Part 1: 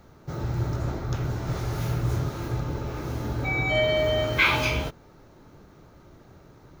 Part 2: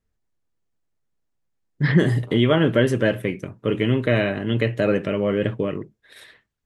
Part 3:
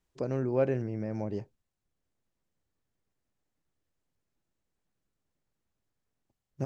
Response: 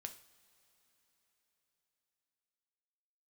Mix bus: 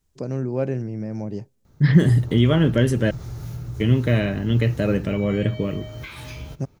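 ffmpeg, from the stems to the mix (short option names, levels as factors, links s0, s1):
-filter_complex "[0:a]acompressor=threshold=0.0447:ratio=6,adelay=1650,volume=0.224,asplit=2[s0][s1];[s1]volume=0.596[s2];[1:a]volume=0.596,asplit=3[s3][s4][s5];[s3]atrim=end=3.11,asetpts=PTS-STARTPTS,afade=t=out:st=3.106:d=0.004:c=hsin[s6];[s4]atrim=start=3.11:end=3.8,asetpts=PTS-STARTPTS,volume=0[s7];[s5]atrim=start=3.8,asetpts=PTS-STARTPTS,afade=t=in:d=0.004:c=hsin[s8];[s6][s7][s8]concat=n=3:v=0:a=1[s9];[2:a]highpass=130,volume=1.06,asplit=2[s10][s11];[s11]volume=0.0668[s12];[3:a]atrim=start_sample=2205[s13];[s2][s12]amix=inputs=2:normalize=0[s14];[s14][s13]afir=irnorm=-1:irlink=0[s15];[s0][s9][s10][s15]amix=inputs=4:normalize=0,bass=f=250:g=10,treble=f=4000:g=8"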